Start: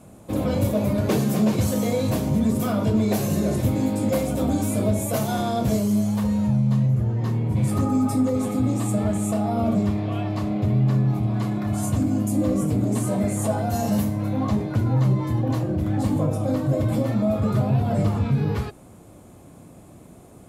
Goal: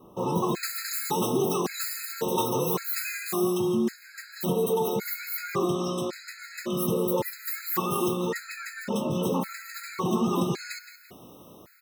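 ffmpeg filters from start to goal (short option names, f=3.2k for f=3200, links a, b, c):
-filter_complex "[0:a]acrossover=split=1500[a][b];[b]dynaudnorm=f=320:g=5:m=12dB[c];[a][c]amix=inputs=2:normalize=0,asplit=2[d][e];[e]adelay=295,lowpass=f=3.7k:p=1,volume=-10dB,asplit=2[f][g];[g]adelay=295,lowpass=f=3.7k:p=1,volume=0.41,asplit=2[h][i];[i]adelay=295,lowpass=f=3.7k:p=1,volume=0.41,asplit=2[j][k];[k]adelay=295,lowpass=f=3.7k:p=1,volume=0.41[l];[d][f][h][j][l]amix=inputs=5:normalize=0,asetrate=76440,aresample=44100,afftfilt=real='re*gt(sin(2*PI*0.9*pts/sr)*(1-2*mod(floor(b*sr/1024/1300),2)),0)':imag='im*gt(sin(2*PI*0.9*pts/sr)*(1-2*mod(floor(b*sr/1024/1300),2)),0)':win_size=1024:overlap=0.75,volume=-4.5dB"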